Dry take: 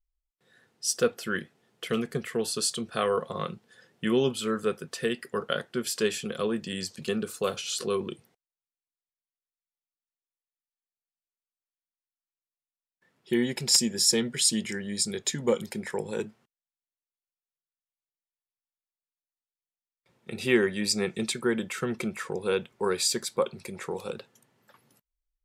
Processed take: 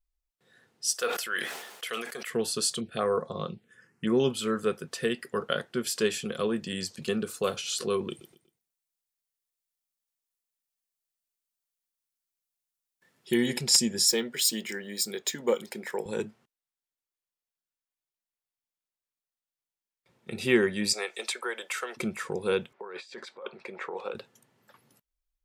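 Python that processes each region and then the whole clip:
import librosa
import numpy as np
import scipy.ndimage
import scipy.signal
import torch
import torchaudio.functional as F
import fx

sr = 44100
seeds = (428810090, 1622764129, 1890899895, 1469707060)

y = fx.chain(x, sr, fx.highpass(hz=730.0, slope=12),
    fx.high_shelf(hz=11000.0, db=8.5),
    fx.sustainer(db_per_s=52.0), at=(0.94, 2.3))
y = fx.chain(y, sr, fx.lowpass(hz=11000.0, slope=12),
    fx.env_phaser(low_hz=570.0, high_hz=3000.0, full_db=-25.0), at=(2.8, 4.2))
y = fx.chain(y, sr, fx.high_shelf(hz=4200.0, db=9.5),
    fx.echo_feedback(ms=120, feedback_pct=36, wet_db=-14.0), at=(8.09, 13.58))
y = fx.chain(y, sr, fx.highpass(hz=300.0, slope=12),
    fx.resample_linear(factor=2), at=(14.08, 16.06))
y = fx.chain(y, sr, fx.highpass(hz=520.0, slope=24),
    fx.band_squash(depth_pct=70), at=(20.93, 21.97))
y = fx.chain(y, sr, fx.over_compress(threshold_db=-34.0, ratio=-1.0),
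    fx.bandpass_edges(low_hz=480.0, high_hz=2300.0), at=(22.73, 24.15))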